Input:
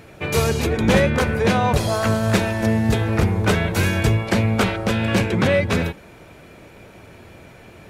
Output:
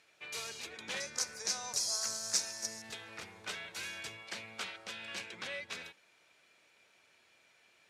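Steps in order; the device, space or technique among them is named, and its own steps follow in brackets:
0:01.00–0:02.82: high shelf with overshoot 4,200 Hz +10.5 dB, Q 3
piezo pickup straight into a mixer (low-pass filter 5,300 Hz 12 dB per octave; first difference)
level −6.5 dB

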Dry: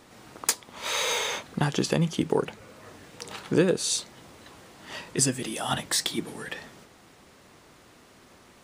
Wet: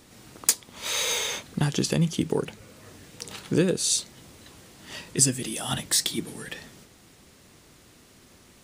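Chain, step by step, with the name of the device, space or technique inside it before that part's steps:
smiley-face EQ (low-shelf EQ 130 Hz +4 dB; parametric band 940 Hz −6.5 dB 2.2 octaves; high-shelf EQ 5,800 Hz +5 dB)
level +1 dB

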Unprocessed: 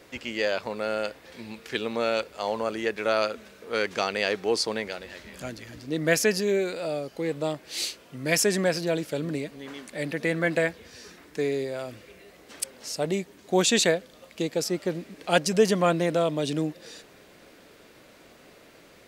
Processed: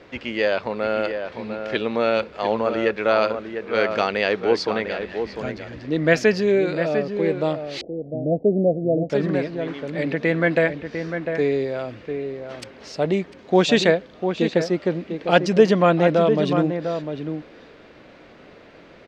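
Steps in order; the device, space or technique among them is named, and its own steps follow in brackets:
shout across a valley (high-frequency loss of the air 210 metres; slap from a distant wall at 120 metres, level −7 dB)
0:07.81–0:09.10: Butterworth low-pass 720 Hz 72 dB per octave
level +6.5 dB

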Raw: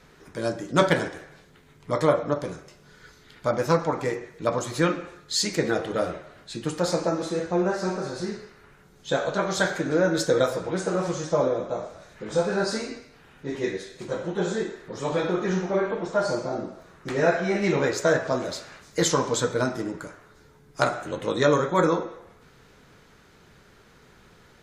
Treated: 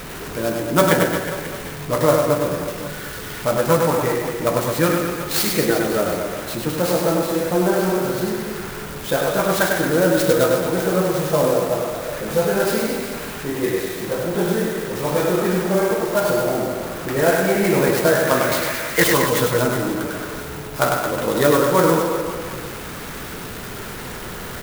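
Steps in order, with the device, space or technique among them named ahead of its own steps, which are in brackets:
0:18.27–0:19.04: parametric band 2,100 Hz +14 dB 1.7 octaves
early CD player with a faulty converter (converter with a step at zero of −31.5 dBFS; converter with an unsteady clock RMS 0.045 ms)
reverse bouncing-ball delay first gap 100 ms, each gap 1.2×, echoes 5
level +3 dB

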